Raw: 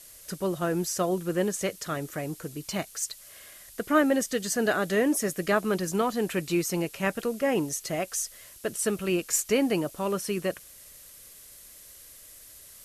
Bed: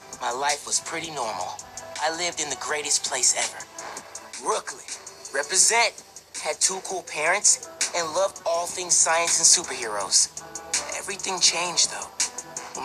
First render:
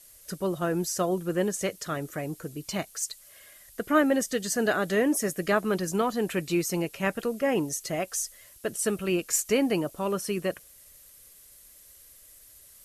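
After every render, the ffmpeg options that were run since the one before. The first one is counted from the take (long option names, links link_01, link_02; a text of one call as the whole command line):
ffmpeg -i in.wav -af "afftdn=noise_reduction=6:noise_floor=-50" out.wav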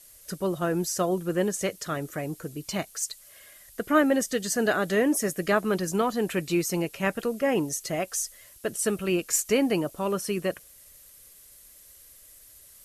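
ffmpeg -i in.wav -af "volume=1dB" out.wav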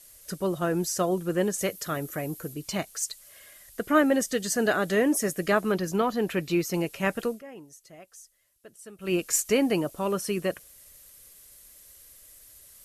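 ffmpeg -i in.wav -filter_complex "[0:a]asettb=1/sr,asplit=3[link_01][link_02][link_03];[link_01]atrim=end=1.584[link_04];[link_02]atrim=start=1.58:end=2.54,asetpts=PTS-STARTPTS,afade=type=in:duration=0.004:curve=qsin,afade=type=out:start_time=0.956:duration=0.004:curve=qsin,equalizer=frequency=12000:width=2.5:gain=9[link_05];[link_03]atrim=start=2.536[link_06];[link_04][link_05]acrossfade=duration=0.004:curve1=hsin:curve2=qsin[link_07];[link_07][link_06]acrossfade=duration=0.004:curve1=qsin:curve2=hsin,asettb=1/sr,asplit=3[link_08][link_09][link_10];[link_08]atrim=end=5.724[link_11];[link_09]atrim=start=5.72:end=6.74,asetpts=PTS-STARTPTS,afade=type=in:duration=0.004:curve=qsin,afade=type=out:start_time=1.016:duration=0.004:curve=qsin,equalizer=frequency=8700:width=1.2:gain=-8[link_12];[link_10]atrim=start=6.736[link_13];[link_11][link_12]acrossfade=duration=0.004:curve1=hsin:curve2=qsin[link_14];[link_14][link_13]acrossfade=duration=0.004:curve1=qsin:curve2=hsin,asplit=3[link_15][link_16][link_17];[link_15]atrim=end=7.43,asetpts=PTS-STARTPTS,afade=type=out:start_time=7.27:duration=0.16:silence=0.105925[link_18];[link_16]atrim=start=7.43:end=8.98,asetpts=PTS-STARTPTS,volume=-19.5dB[link_19];[link_17]atrim=start=8.98,asetpts=PTS-STARTPTS,afade=type=in:duration=0.16:silence=0.105925[link_20];[link_18][link_19][link_20]concat=n=3:v=0:a=1" out.wav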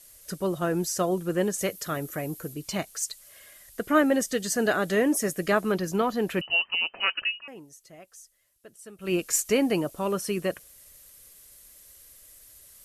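ffmpeg -i in.wav -filter_complex "[0:a]asettb=1/sr,asplit=3[link_01][link_02][link_03];[link_01]atrim=end=6.414[link_04];[link_02]atrim=start=6.41:end=7.48,asetpts=PTS-STARTPTS,afade=type=in:duration=0.004:curve=qsin,afade=type=out:start_time=1.066:duration=0.004:curve=qsin,lowpass=frequency=2600:width_type=q:width=0.5098,lowpass=frequency=2600:width_type=q:width=0.6013,lowpass=frequency=2600:width_type=q:width=0.9,lowpass=frequency=2600:width_type=q:width=2.563,afreqshift=-3100[link_05];[link_03]atrim=start=7.476[link_06];[link_04][link_05]acrossfade=duration=0.004:curve1=hsin:curve2=qsin[link_07];[link_07][link_06]acrossfade=duration=0.004:curve1=qsin:curve2=hsin" out.wav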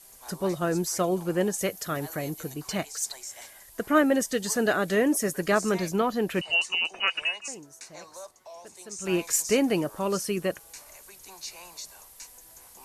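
ffmpeg -i in.wav -i bed.wav -filter_complex "[1:a]volume=-20.5dB[link_01];[0:a][link_01]amix=inputs=2:normalize=0" out.wav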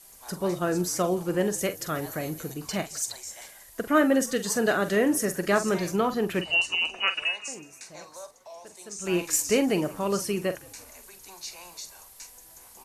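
ffmpeg -i in.wav -filter_complex "[0:a]asplit=2[link_01][link_02];[link_02]adelay=45,volume=-11dB[link_03];[link_01][link_03]amix=inputs=2:normalize=0,asplit=5[link_04][link_05][link_06][link_07][link_08];[link_05]adelay=171,afreqshift=-42,volume=-24dB[link_09];[link_06]adelay=342,afreqshift=-84,volume=-28.7dB[link_10];[link_07]adelay=513,afreqshift=-126,volume=-33.5dB[link_11];[link_08]adelay=684,afreqshift=-168,volume=-38.2dB[link_12];[link_04][link_09][link_10][link_11][link_12]amix=inputs=5:normalize=0" out.wav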